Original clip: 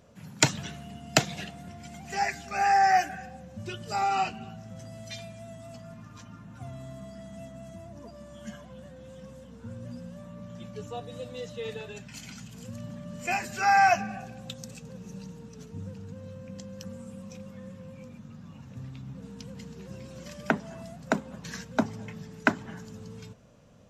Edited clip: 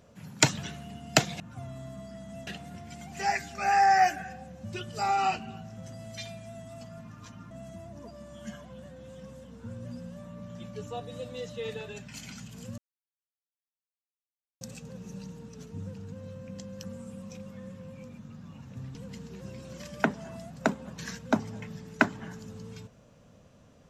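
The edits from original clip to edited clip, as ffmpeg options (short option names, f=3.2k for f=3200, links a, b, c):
-filter_complex "[0:a]asplit=7[a][b][c][d][e][f][g];[a]atrim=end=1.402[h];[b]atrim=start=6.438:end=7.512[i];[c]atrim=start=1.398:end=6.442[j];[d]atrim=start=7.508:end=12.78,asetpts=PTS-STARTPTS,afade=t=out:st=5.268:d=0.004:c=hsin[k];[e]atrim=start=12.78:end=14.61,asetpts=PTS-STARTPTS,volume=0[l];[f]atrim=start=14.61:end=18.952,asetpts=PTS-STARTPTS,afade=t=in:d=0.004:c=hsin[m];[g]atrim=start=19.408[n];[h][i]acrossfade=d=0.004:c1=hsin:c2=hsin[o];[o][j]acrossfade=d=0.004:c1=hsin:c2=hsin[p];[k][l][m]concat=n=3:v=0:a=1[q];[p][q]acrossfade=d=0.004:c1=hsin:c2=hsin[r];[r][n]acrossfade=d=0.004:c1=hsin:c2=hsin"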